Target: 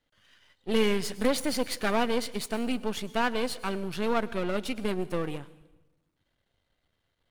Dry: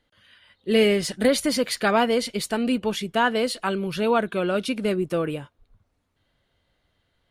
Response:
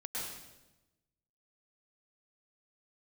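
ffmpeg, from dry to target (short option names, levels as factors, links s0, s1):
-filter_complex "[0:a]aeval=exprs='if(lt(val(0),0),0.251*val(0),val(0))':c=same,asplit=2[s0][s1];[1:a]atrim=start_sample=2205,highshelf=f=5800:g=9[s2];[s1][s2]afir=irnorm=-1:irlink=0,volume=0.1[s3];[s0][s3]amix=inputs=2:normalize=0,volume=0.668"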